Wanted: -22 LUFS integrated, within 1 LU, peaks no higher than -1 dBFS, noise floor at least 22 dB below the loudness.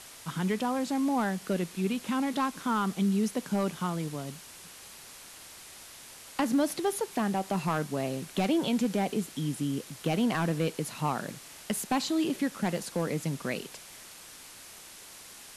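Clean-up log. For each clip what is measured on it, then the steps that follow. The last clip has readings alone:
clipped samples 0.5%; clipping level -20.0 dBFS; noise floor -49 dBFS; noise floor target -53 dBFS; loudness -30.5 LUFS; peak level -20.0 dBFS; loudness target -22.0 LUFS
-> clip repair -20 dBFS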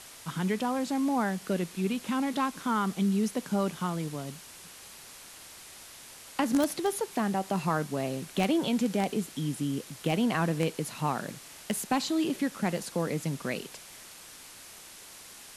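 clipped samples 0.0%; noise floor -49 dBFS; noise floor target -53 dBFS
-> noise reduction 6 dB, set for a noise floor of -49 dBFS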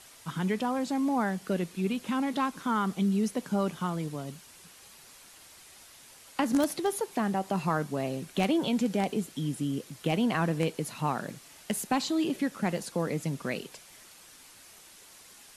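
noise floor -53 dBFS; loudness -30.5 LUFS; peak level -11.5 dBFS; loudness target -22.0 LUFS
-> trim +8.5 dB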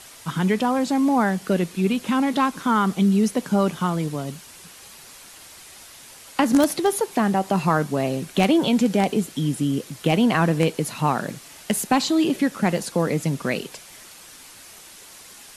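loudness -22.0 LUFS; peak level -3.0 dBFS; noise floor -45 dBFS

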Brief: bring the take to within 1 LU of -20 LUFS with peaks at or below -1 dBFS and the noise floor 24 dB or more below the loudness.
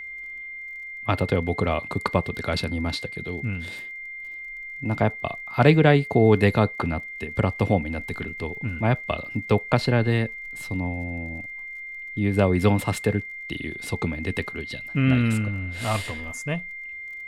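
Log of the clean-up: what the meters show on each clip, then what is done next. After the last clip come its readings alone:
tick rate 38 per s; steady tone 2.1 kHz; tone level -34 dBFS; loudness -25.0 LUFS; peak level -3.0 dBFS; loudness target -20.0 LUFS
-> de-click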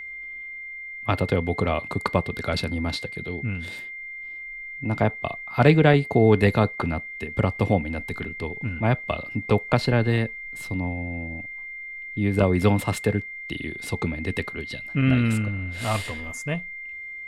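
tick rate 0.17 per s; steady tone 2.1 kHz; tone level -34 dBFS
-> band-stop 2.1 kHz, Q 30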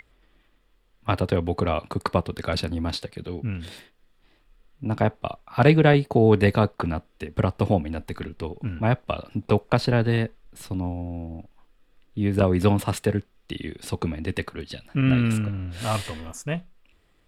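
steady tone not found; loudness -25.0 LUFS; peak level -2.5 dBFS; loudness target -20.0 LUFS
-> trim +5 dB; peak limiter -1 dBFS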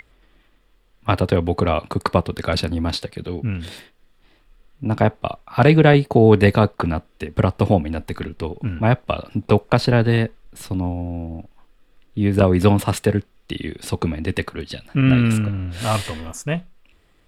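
loudness -20.0 LUFS; peak level -1.0 dBFS; noise floor -58 dBFS

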